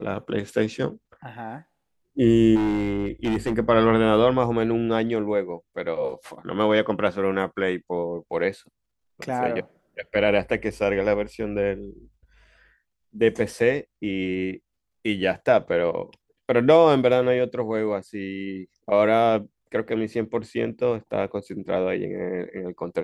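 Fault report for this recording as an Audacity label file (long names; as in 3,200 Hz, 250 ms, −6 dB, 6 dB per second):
2.550000	3.540000	clipping −19.5 dBFS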